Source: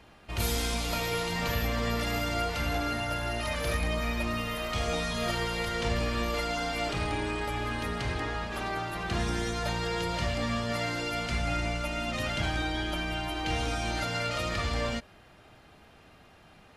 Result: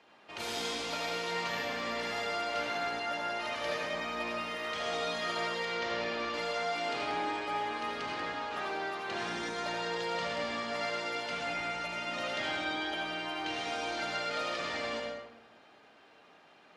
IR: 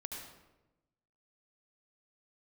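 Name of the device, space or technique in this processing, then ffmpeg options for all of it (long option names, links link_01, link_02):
supermarket ceiling speaker: -filter_complex "[0:a]asettb=1/sr,asplit=3[link_01][link_02][link_03];[link_01]atrim=end=5.654[link_04];[link_02]atrim=start=5.65:end=6.34,asetpts=PTS-STARTPTS,afade=type=in:duration=0.004:curve=qsin,afade=type=out:start_time=0.686:duration=0.004:curve=qsin,lowpass=frequency=6500:width=0.5412,lowpass=frequency=6500:width=1.3066[link_05];[link_03]atrim=start=6.336[link_06];[link_04][link_05]acrossfade=duration=0.004:curve1=hsin:curve2=qsin[link_07];[link_07][link_06]acrossfade=duration=0.004:curve1=qsin:curve2=hsin,highpass=340,lowpass=6000[link_08];[1:a]atrim=start_sample=2205[link_09];[link_08][link_09]afir=irnorm=-1:irlink=0"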